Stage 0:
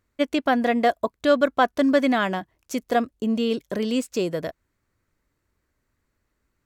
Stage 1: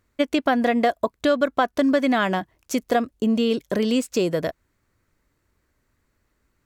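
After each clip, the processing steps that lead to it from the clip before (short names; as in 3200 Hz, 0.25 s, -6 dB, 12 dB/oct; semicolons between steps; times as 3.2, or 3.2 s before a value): compressor 4:1, threshold -21 dBFS, peak gain reduction 7.5 dB; gain +4.5 dB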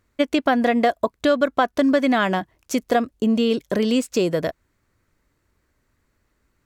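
high shelf 12000 Hz -3 dB; gain +1.5 dB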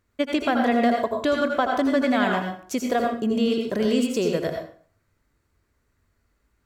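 reverb RT60 0.45 s, pre-delay 72 ms, DRR 1.5 dB; gain -4.5 dB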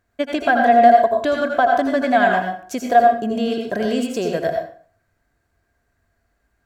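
small resonant body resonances 700/1600 Hz, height 15 dB, ringing for 45 ms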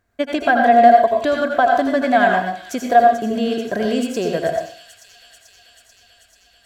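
thin delay 0.438 s, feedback 75%, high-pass 3700 Hz, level -8.5 dB; gain +1 dB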